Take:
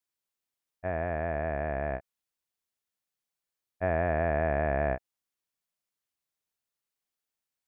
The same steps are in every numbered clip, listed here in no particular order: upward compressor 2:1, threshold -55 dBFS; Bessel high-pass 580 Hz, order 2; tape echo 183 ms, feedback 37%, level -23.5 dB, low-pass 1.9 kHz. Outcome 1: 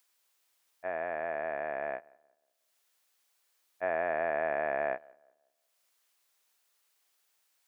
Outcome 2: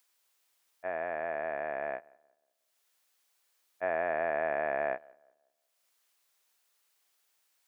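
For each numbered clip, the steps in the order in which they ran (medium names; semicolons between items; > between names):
Bessel high-pass > upward compressor > tape echo; upward compressor > Bessel high-pass > tape echo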